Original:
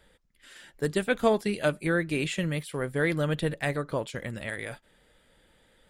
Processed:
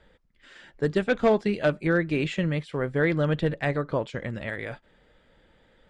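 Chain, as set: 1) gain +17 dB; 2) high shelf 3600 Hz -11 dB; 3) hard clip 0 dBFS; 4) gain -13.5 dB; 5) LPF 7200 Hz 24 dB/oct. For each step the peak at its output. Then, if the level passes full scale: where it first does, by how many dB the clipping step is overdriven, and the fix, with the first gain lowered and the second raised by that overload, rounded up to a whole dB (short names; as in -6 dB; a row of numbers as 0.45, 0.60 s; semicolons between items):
+6.5, +5.5, 0.0, -13.5, -13.0 dBFS; step 1, 5.5 dB; step 1 +11 dB, step 4 -7.5 dB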